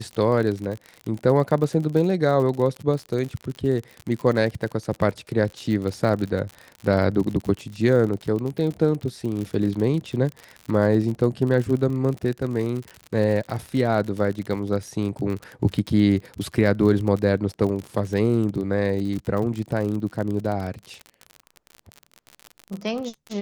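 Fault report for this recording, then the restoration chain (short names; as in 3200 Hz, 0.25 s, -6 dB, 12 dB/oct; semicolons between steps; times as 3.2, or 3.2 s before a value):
crackle 50/s -28 dBFS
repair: de-click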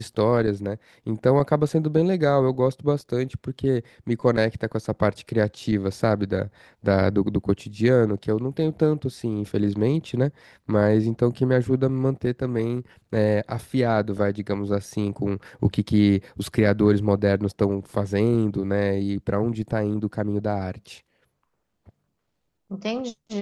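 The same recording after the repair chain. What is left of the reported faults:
none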